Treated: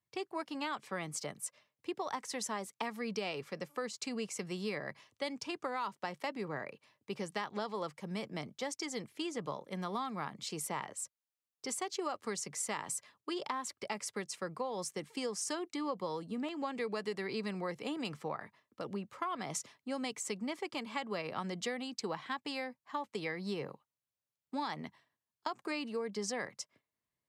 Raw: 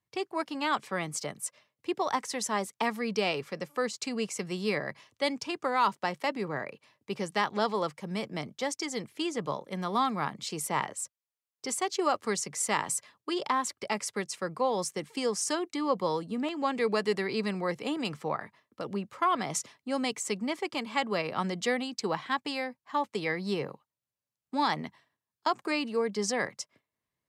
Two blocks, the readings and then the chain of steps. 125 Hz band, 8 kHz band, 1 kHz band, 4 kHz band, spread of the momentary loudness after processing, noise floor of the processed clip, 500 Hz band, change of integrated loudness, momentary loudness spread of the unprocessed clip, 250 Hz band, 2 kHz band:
-6.5 dB, -6.0 dB, -9.5 dB, -7.0 dB, 5 LU, under -85 dBFS, -8.0 dB, -8.0 dB, 8 LU, -7.0 dB, -8.0 dB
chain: compression, threshold -29 dBFS, peak gain reduction 8.5 dB; trim -4.5 dB

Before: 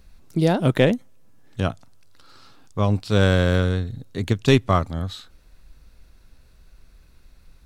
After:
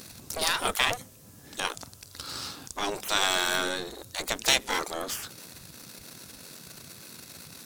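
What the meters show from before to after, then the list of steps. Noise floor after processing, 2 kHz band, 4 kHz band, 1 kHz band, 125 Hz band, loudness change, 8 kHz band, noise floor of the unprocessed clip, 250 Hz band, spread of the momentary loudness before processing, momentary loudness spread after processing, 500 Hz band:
-52 dBFS, 0.0 dB, +4.5 dB, -2.0 dB, -26.0 dB, -6.5 dB, +12.0 dB, -53 dBFS, -17.5 dB, 13 LU, 20 LU, -12.0 dB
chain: tone controls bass +3 dB, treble +11 dB; power-law waveshaper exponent 0.7; spectral gate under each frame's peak -20 dB weak

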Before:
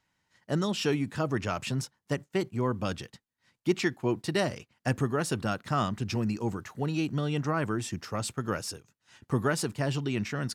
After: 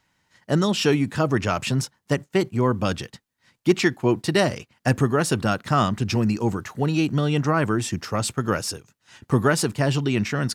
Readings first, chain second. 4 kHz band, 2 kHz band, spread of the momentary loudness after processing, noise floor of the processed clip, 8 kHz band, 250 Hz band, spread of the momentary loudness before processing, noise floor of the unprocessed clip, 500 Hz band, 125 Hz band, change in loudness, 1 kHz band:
+8.0 dB, +8.0 dB, 6 LU, -72 dBFS, +8.0 dB, +8.0 dB, 6 LU, -80 dBFS, +8.0 dB, +8.0 dB, +8.0 dB, +8.0 dB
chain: hard clipper -15.5 dBFS, distortion -37 dB; trim +8 dB

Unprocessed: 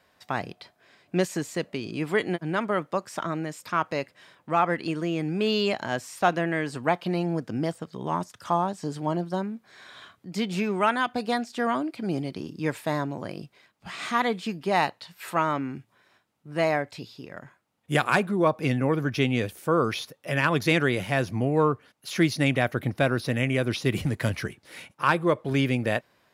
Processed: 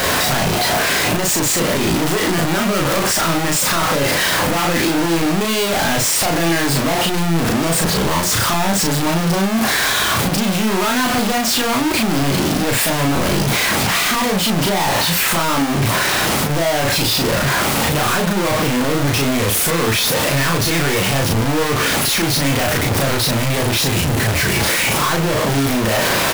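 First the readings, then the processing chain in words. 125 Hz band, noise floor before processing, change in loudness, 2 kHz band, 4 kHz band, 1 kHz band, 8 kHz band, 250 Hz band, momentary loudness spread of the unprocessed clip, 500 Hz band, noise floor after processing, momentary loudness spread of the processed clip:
+10.5 dB, -68 dBFS, +11.0 dB, +11.5 dB, +18.0 dB, +9.0 dB, +25.5 dB, +9.5 dB, 12 LU, +7.5 dB, -18 dBFS, 2 LU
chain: one-bit comparator; doubling 36 ms -2 dB; trim +8.5 dB

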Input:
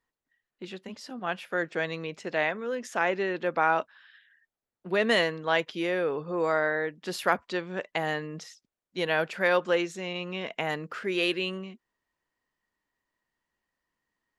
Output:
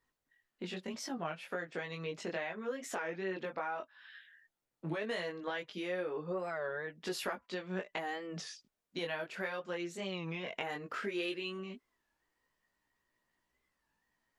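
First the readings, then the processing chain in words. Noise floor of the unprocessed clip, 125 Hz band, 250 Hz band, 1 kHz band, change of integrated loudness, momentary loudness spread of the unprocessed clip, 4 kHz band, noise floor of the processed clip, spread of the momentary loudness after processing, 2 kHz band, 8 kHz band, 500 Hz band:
under -85 dBFS, -6.5 dB, -8.0 dB, -12.0 dB, -11.0 dB, 15 LU, -10.0 dB, under -85 dBFS, 8 LU, -11.5 dB, -3.5 dB, -10.5 dB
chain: compression 6:1, threshold -38 dBFS, peak gain reduction 18.5 dB; chorus voices 2, 0.15 Hz, delay 20 ms, depth 3.7 ms; warped record 33 1/3 rpm, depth 160 cents; trim +5 dB

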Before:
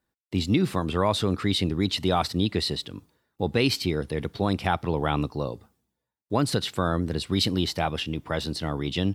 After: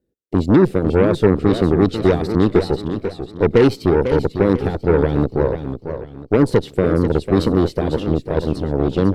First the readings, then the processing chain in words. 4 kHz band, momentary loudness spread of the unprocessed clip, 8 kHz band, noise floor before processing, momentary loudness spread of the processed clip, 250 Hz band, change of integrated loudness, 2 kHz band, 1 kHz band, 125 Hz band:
-6.5 dB, 8 LU, no reading, -84 dBFS, 8 LU, +10.0 dB, +9.0 dB, +4.0 dB, +3.0 dB, +8.5 dB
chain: resonant low shelf 660 Hz +13.5 dB, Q 3; Chebyshev shaper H 8 -19 dB, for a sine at 5 dBFS; modulated delay 494 ms, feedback 36%, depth 166 cents, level -9 dB; trim -7 dB

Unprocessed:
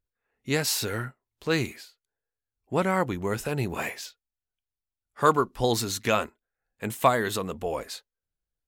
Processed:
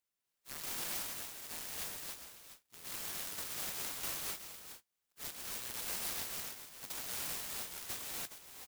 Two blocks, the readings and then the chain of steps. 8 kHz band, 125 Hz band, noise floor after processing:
-5.0 dB, -26.0 dB, under -85 dBFS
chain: inverse Chebyshev high-pass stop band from 2.6 kHz, stop band 50 dB; de-esser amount 75%; reverb removal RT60 0.57 s; compression 3:1, threshold -48 dBFS, peak gain reduction 6 dB; integer overflow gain 42 dB; delay 416 ms -10 dB; gated-style reverb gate 320 ms rising, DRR -3.5 dB; buffer glitch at 2.75/3.94/8.16 s, samples 512, times 7; sampling jitter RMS 0.11 ms; trim +9.5 dB

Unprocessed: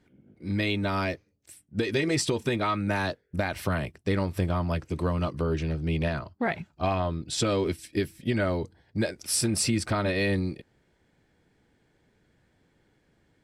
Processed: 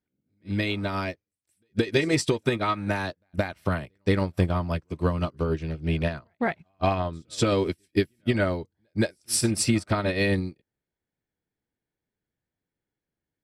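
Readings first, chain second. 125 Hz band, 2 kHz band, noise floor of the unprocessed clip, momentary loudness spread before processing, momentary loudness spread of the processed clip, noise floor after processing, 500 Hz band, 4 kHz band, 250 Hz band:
+1.5 dB, +1.0 dB, -69 dBFS, 6 LU, 7 LU, under -85 dBFS, +2.0 dB, +0.5 dB, +2.0 dB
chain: pre-echo 173 ms -21.5 dB; upward expansion 2.5:1, over -41 dBFS; trim +6 dB

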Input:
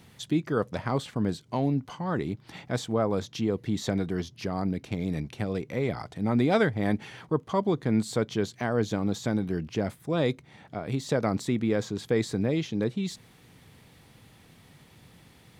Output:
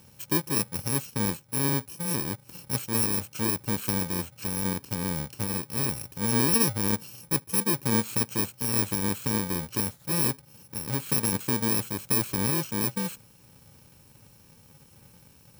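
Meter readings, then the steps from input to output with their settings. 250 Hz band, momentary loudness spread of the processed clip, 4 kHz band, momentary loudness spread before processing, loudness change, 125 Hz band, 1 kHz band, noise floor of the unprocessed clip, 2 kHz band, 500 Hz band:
-2.5 dB, 7 LU, +5.0 dB, 6 LU, +2.5 dB, -1.0 dB, -1.0 dB, -56 dBFS, +0.5 dB, -6.5 dB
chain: bit-reversed sample order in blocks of 64 samples

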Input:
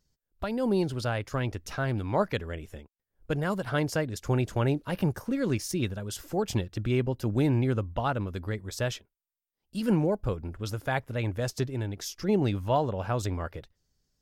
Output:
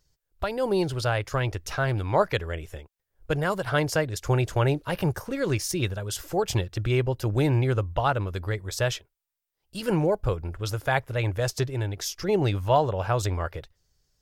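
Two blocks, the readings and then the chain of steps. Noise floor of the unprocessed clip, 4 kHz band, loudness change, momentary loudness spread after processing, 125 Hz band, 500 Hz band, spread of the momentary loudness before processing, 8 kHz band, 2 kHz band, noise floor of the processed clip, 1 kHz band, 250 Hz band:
under -85 dBFS, +5.5 dB, +3.0 dB, 8 LU, +3.5 dB, +4.0 dB, 9 LU, +5.5 dB, +5.5 dB, -82 dBFS, +5.0 dB, -1.0 dB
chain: peaking EQ 230 Hz -13 dB 0.65 oct; trim +5.5 dB

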